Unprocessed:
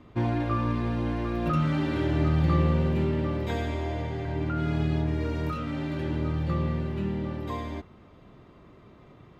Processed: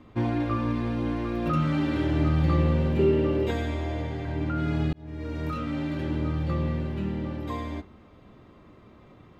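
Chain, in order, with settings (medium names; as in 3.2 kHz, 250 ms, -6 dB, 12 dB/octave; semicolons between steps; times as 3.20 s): 2.99–3.51 s: small resonant body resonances 410/2800 Hz, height 15 dB; reverberation RT60 0.30 s, pre-delay 4 ms, DRR 12.5 dB; 4.93–5.58 s: fade in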